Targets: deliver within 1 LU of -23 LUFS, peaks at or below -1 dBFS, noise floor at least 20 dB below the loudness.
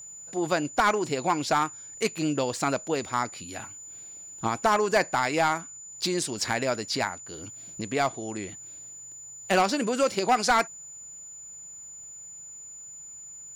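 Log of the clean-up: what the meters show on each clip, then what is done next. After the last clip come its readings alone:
clipped samples 0.5%; clipping level -15.5 dBFS; steady tone 7 kHz; tone level -41 dBFS; loudness -27.0 LUFS; peak level -15.5 dBFS; loudness target -23.0 LUFS
-> clip repair -15.5 dBFS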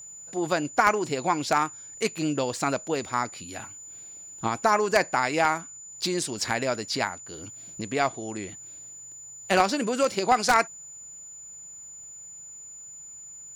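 clipped samples 0.0%; steady tone 7 kHz; tone level -41 dBFS
-> band-stop 7 kHz, Q 30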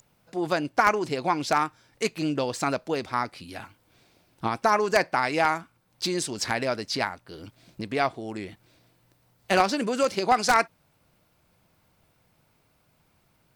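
steady tone not found; loudness -26.0 LUFS; peak level -6.5 dBFS; loudness target -23.0 LUFS
-> trim +3 dB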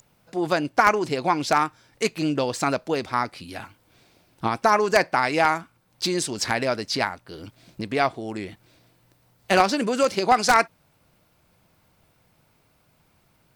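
loudness -23.0 LUFS; peak level -3.5 dBFS; noise floor -64 dBFS

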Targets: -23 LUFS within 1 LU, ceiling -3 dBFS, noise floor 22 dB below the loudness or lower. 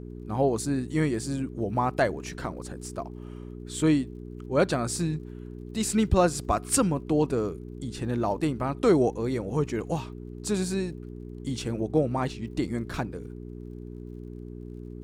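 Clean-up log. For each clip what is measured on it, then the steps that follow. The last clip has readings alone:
tick rate 44 per s; hum 60 Hz; highest harmonic 420 Hz; hum level -37 dBFS; loudness -28.0 LUFS; peak level -9.5 dBFS; loudness target -23.0 LUFS
-> de-click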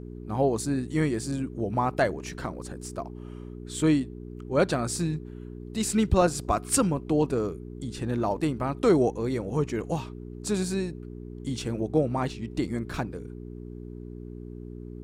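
tick rate 0.20 per s; hum 60 Hz; highest harmonic 420 Hz; hum level -38 dBFS
-> de-hum 60 Hz, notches 7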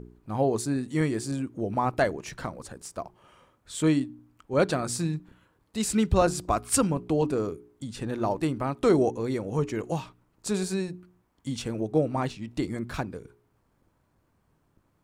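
hum not found; loudness -28.0 LUFS; peak level -10.5 dBFS; loudness target -23.0 LUFS
-> trim +5 dB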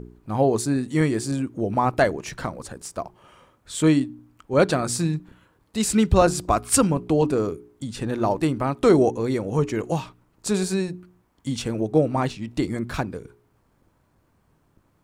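loudness -23.0 LUFS; peak level -5.5 dBFS; noise floor -65 dBFS

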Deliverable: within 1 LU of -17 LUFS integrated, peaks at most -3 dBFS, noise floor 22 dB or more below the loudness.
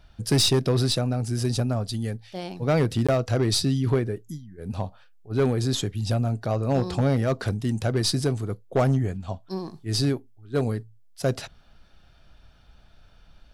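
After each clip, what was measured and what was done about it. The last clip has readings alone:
clipped samples 0.9%; clipping level -15.0 dBFS; dropouts 1; longest dropout 16 ms; loudness -25.5 LUFS; peak level -15.0 dBFS; loudness target -17.0 LUFS
-> clip repair -15 dBFS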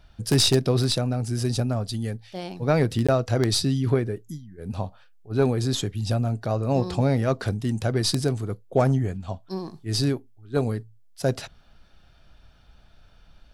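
clipped samples 0.0%; dropouts 1; longest dropout 16 ms
-> interpolate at 3.07 s, 16 ms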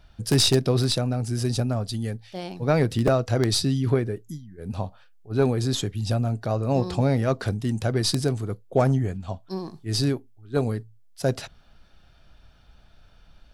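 dropouts 0; loudness -25.0 LUFS; peak level -6.0 dBFS; loudness target -17.0 LUFS
-> trim +8 dB; peak limiter -3 dBFS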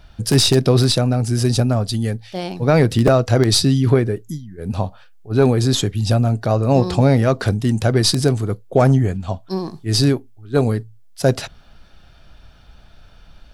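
loudness -17.5 LUFS; peak level -3.0 dBFS; noise floor -47 dBFS

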